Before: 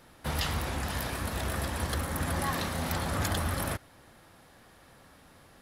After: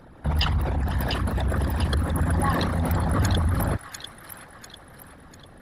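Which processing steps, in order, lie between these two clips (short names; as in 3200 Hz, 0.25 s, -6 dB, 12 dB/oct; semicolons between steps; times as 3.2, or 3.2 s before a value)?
formant sharpening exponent 2; on a send: thin delay 0.696 s, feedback 44%, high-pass 2000 Hz, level -4.5 dB; on the sum: gain +8.5 dB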